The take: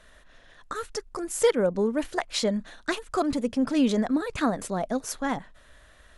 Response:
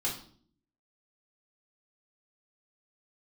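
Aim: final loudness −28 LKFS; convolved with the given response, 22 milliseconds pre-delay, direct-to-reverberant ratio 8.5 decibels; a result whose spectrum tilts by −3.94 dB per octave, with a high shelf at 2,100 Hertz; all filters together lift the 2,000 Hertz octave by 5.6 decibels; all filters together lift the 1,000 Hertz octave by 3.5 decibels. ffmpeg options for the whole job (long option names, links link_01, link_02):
-filter_complex "[0:a]equalizer=frequency=1000:width_type=o:gain=4,equalizer=frequency=2000:width_type=o:gain=9,highshelf=frequency=2100:gain=-6.5,asplit=2[link_01][link_02];[1:a]atrim=start_sample=2205,adelay=22[link_03];[link_02][link_03]afir=irnorm=-1:irlink=0,volume=-13dB[link_04];[link_01][link_04]amix=inputs=2:normalize=0,volume=-2.5dB"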